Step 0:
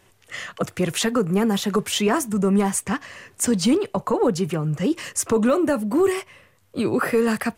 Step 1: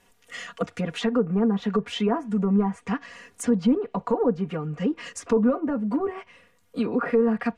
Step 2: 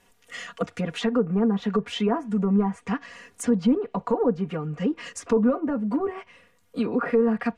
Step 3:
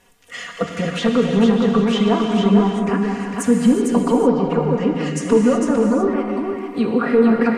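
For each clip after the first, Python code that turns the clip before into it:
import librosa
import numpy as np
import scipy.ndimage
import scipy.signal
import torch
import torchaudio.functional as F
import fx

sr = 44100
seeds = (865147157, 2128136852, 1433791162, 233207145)

y1 = fx.env_lowpass_down(x, sr, base_hz=1100.0, full_db=-16.0)
y1 = y1 + 0.89 * np.pad(y1, (int(4.2 * sr / 1000.0), 0))[:len(y1)]
y1 = y1 * 10.0 ** (-6.0 / 20.0)
y2 = y1
y3 = y2 + 10.0 ** (-4.5 / 20.0) * np.pad(y2, (int(452 * sr / 1000.0), 0))[:len(y2)]
y3 = fx.rev_gated(y3, sr, seeds[0], gate_ms=400, shape='flat', drr_db=2.5)
y3 = y3 * 10.0 ** (5.0 / 20.0)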